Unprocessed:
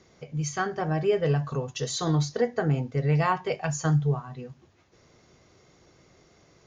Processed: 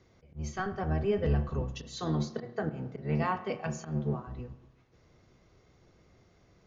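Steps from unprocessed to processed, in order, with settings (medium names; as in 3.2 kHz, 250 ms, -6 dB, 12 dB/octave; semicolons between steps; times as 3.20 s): octave divider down 1 oct, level +3 dB; 1.82–4.27 s: high-pass 130 Hz 24 dB/octave; slow attack 163 ms; distance through air 85 m; spring tank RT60 1.1 s, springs 31 ms, chirp 25 ms, DRR 12.5 dB; trim -6 dB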